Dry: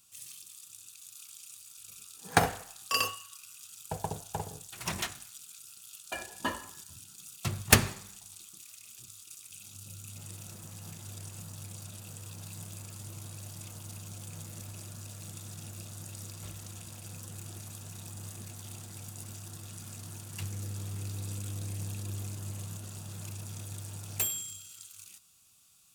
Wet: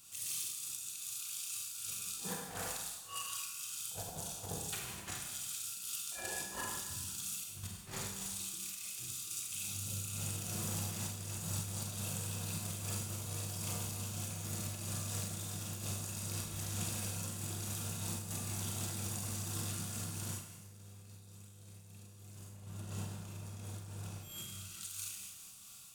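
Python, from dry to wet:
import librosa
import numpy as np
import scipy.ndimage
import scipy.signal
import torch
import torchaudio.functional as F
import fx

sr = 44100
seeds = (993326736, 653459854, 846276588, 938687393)

y = fx.high_shelf(x, sr, hz=3100.0, db=-8.5, at=(22.5, 24.83))
y = fx.over_compress(y, sr, threshold_db=-45.0, ratio=-0.5)
y = fx.rev_schroeder(y, sr, rt60_s=0.98, comb_ms=32, drr_db=-0.5)
y = fx.am_noise(y, sr, seeds[0], hz=5.7, depth_pct=60)
y = F.gain(torch.from_numpy(y), 3.0).numpy()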